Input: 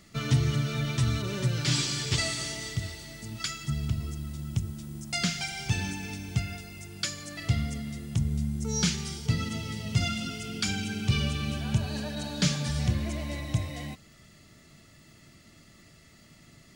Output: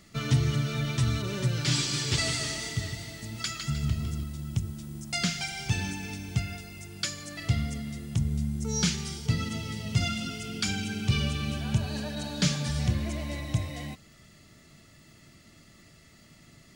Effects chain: 1.78–4.24 s: modulated delay 153 ms, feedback 43%, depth 95 cents, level -6.5 dB

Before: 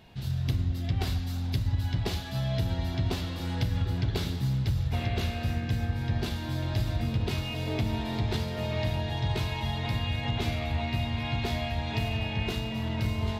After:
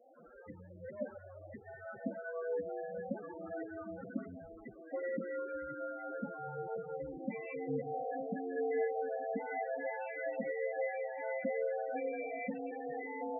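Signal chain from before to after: mistuned SSB -170 Hz 420–2200 Hz; loudest bins only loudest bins 8; trim +3 dB

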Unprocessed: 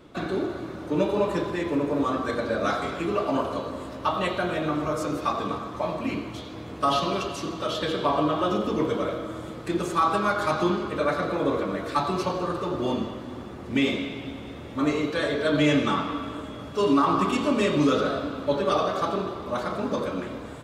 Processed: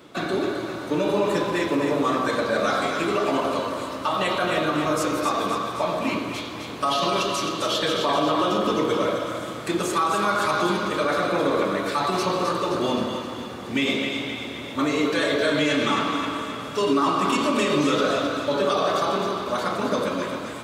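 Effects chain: high-pass 93 Hz; tilt EQ +1.5 dB/octave; peak limiter -18.5 dBFS, peak gain reduction 7 dB; two-band feedback delay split 950 Hz, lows 132 ms, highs 262 ms, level -6 dB; trim +4.5 dB

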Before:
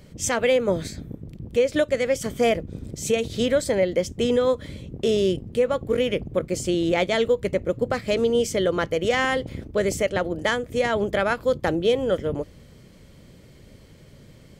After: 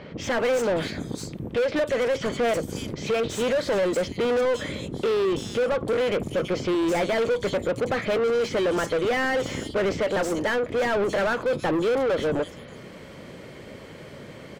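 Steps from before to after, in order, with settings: bands offset in time lows, highs 330 ms, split 4.6 kHz; overdrive pedal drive 30 dB, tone 1.6 kHz, clips at -9.5 dBFS; trim -6.5 dB

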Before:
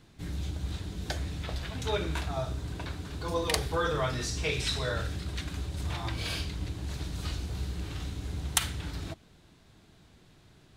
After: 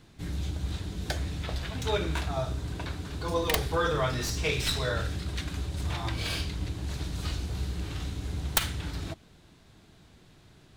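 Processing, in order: tracing distortion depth 0.31 ms; trim +2 dB

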